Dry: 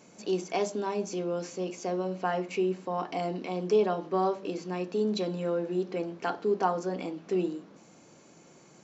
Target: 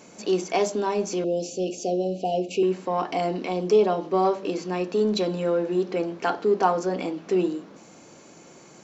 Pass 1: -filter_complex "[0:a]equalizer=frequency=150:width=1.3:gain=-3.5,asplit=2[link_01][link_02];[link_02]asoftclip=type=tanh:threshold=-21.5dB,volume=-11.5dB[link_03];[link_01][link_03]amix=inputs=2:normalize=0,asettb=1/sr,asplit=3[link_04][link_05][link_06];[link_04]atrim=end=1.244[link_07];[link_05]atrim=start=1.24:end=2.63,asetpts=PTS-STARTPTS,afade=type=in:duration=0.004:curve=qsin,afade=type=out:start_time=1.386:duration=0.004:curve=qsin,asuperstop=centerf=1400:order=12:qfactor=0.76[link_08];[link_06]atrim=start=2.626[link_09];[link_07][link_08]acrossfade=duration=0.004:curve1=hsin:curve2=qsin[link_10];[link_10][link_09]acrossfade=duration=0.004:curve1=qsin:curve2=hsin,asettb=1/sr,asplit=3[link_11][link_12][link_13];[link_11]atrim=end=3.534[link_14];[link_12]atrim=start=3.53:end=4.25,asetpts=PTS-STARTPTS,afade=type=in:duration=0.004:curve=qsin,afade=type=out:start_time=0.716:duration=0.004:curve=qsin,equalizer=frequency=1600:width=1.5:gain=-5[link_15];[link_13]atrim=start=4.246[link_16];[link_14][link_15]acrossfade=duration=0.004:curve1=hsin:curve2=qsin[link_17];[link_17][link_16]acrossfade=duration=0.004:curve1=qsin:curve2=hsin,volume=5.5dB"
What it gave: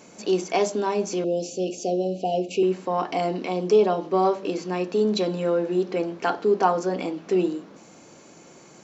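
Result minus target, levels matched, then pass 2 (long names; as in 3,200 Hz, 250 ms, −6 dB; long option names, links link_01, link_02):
soft clipping: distortion −9 dB
-filter_complex "[0:a]equalizer=frequency=150:width=1.3:gain=-3.5,asplit=2[link_01][link_02];[link_02]asoftclip=type=tanh:threshold=-32dB,volume=-11.5dB[link_03];[link_01][link_03]amix=inputs=2:normalize=0,asettb=1/sr,asplit=3[link_04][link_05][link_06];[link_04]atrim=end=1.244[link_07];[link_05]atrim=start=1.24:end=2.63,asetpts=PTS-STARTPTS,afade=type=in:duration=0.004:curve=qsin,afade=type=out:start_time=1.386:duration=0.004:curve=qsin,asuperstop=centerf=1400:order=12:qfactor=0.76[link_08];[link_06]atrim=start=2.626[link_09];[link_07][link_08]acrossfade=duration=0.004:curve1=hsin:curve2=qsin[link_10];[link_10][link_09]acrossfade=duration=0.004:curve1=qsin:curve2=hsin,asettb=1/sr,asplit=3[link_11][link_12][link_13];[link_11]atrim=end=3.534[link_14];[link_12]atrim=start=3.53:end=4.25,asetpts=PTS-STARTPTS,afade=type=in:duration=0.004:curve=qsin,afade=type=out:start_time=0.716:duration=0.004:curve=qsin,equalizer=frequency=1600:width=1.5:gain=-5[link_15];[link_13]atrim=start=4.246[link_16];[link_14][link_15]acrossfade=duration=0.004:curve1=hsin:curve2=qsin[link_17];[link_17][link_16]acrossfade=duration=0.004:curve1=qsin:curve2=hsin,volume=5.5dB"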